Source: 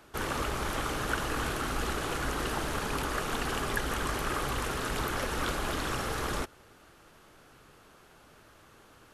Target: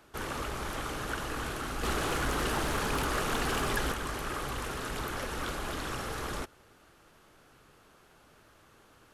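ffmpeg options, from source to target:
-filter_complex "[0:a]asettb=1/sr,asplit=3[s0][s1][s2];[s0]atrim=end=1.834[s3];[s1]atrim=start=1.83:end=3.92,asetpts=PTS-STARTPTS,afade=t=in:d=0.004:c=qsin,afade=t=out:st=2.086:d=0.004:c=qsin,acontrast=75[s4];[s2]atrim=start=3.916[s5];[s3][s4]acrossfade=d=0.004:c1=hsin:c2=qsin[s6];[s6][s5]acrossfade=d=0.004:c1=qsin:c2=hsin,asoftclip=type=tanh:threshold=0.0891,volume=0.708"

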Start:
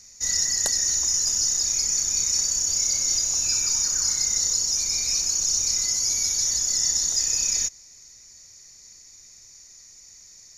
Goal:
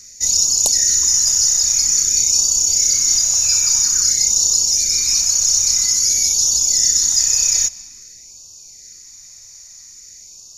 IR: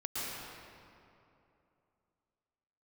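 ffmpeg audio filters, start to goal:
-filter_complex "[0:a]highshelf=f=6600:g=6.5,asplit=2[s0][s1];[1:a]atrim=start_sample=2205[s2];[s1][s2]afir=irnorm=-1:irlink=0,volume=0.0944[s3];[s0][s3]amix=inputs=2:normalize=0,afftfilt=real='re*(1-between(b*sr/1024,280*pow(1800/280,0.5+0.5*sin(2*PI*0.5*pts/sr))/1.41,280*pow(1800/280,0.5+0.5*sin(2*PI*0.5*pts/sr))*1.41))':imag='im*(1-between(b*sr/1024,280*pow(1800/280,0.5+0.5*sin(2*PI*0.5*pts/sr))/1.41,280*pow(1800/280,0.5+0.5*sin(2*PI*0.5*pts/sr))*1.41))':win_size=1024:overlap=0.75,volume=1.68"

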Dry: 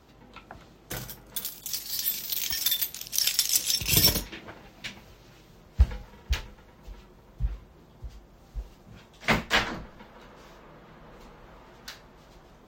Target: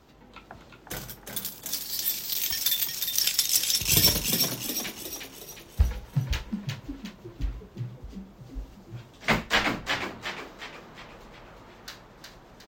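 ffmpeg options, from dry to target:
-filter_complex "[0:a]bandreject=f=60:t=h:w=6,bandreject=f=120:t=h:w=6,asplit=2[s0][s1];[s1]asplit=6[s2][s3][s4][s5][s6][s7];[s2]adelay=361,afreqshift=72,volume=0.562[s8];[s3]adelay=722,afreqshift=144,volume=0.269[s9];[s4]adelay=1083,afreqshift=216,volume=0.129[s10];[s5]adelay=1444,afreqshift=288,volume=0.0624[s11];[s6]adelay=1805,afreqshift=360,volume=0.0299[s12];[s7]adelay=2166,afreqshift=432,volume=0.0143[s13];[s8][s9][s10][s11][s12][s13]amix=inputs=6:normalize=0[s14];[s0][s14]amix=inputs=2:normalize=0"

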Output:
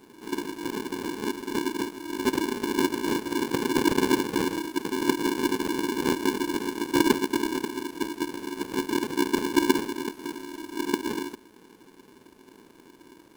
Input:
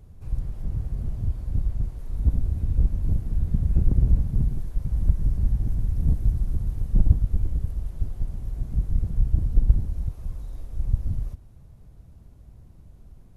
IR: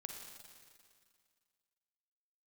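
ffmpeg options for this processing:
-af "tiltshelf=f=640:g=-6,aeval=exprs='val(0)*sgn(sin(2*PI*320*n/s))':c=same"

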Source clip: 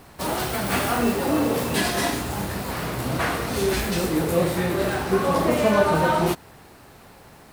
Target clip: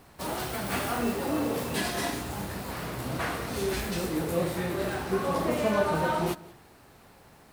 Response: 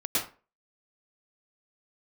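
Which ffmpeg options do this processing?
-filter_complex "[0:a]asplit=2[s0][s1];[1:a]atrim=start_sample=2205,adelay=65[s2];[s1][s2]afir=irnorm=-1:irlink=0,volume=0.0335[s3];[s0][s3]amix=inputs=2:normalize=0,volume=0.447"

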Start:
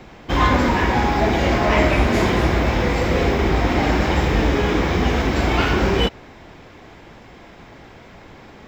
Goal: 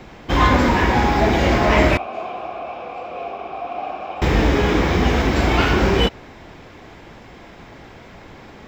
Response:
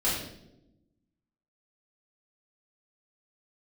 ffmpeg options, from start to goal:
-filter_complex "[0:a]asettb=1/sr,asplit=3[s0][s1][s2];[s0]atrim=end=1.974[s3];[s1]atrim=start=1.97:end=4.22,asetpts=PTS-STARTPTS,afade=t=in:d=0.004:c=qsin,afade=t=out:st=2.246:d=0.004:c=qsin,asplit=3[s4][s5][s6];[s4]bandpass=f=730:t=q:w=8,volume=1[s7];[s5]bandpass=f=1090:t=q:w=8,volume=0.501[s8];[s6]bandpass=f=2440:t=q:w=8,volume=0.355[s9];[s7][s8][s9]amix=inputs=3:normalize=0[s10];[s2]atrim=start=4.216[s11];[s3][s10]acrossfade=d=0.004:c1=hsin:c2=qsin[s12];[s12][s11]acrossfade=d=0.004:c1=qsin:c2=hsin,volume=1.19"

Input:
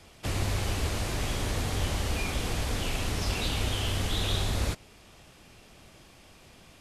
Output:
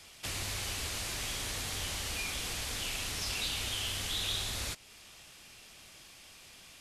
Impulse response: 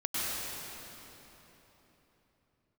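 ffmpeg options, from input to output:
-filter_complex "[0:a]tiltshelf=f=1300:g=-7.5,asplit=2[s0][s1];[s1]acompressor=threshold=0.0112:ratio=6,volume=1.19[s2];[s0][s2]amix=inputs=2:normalize=0,volume=0.376"

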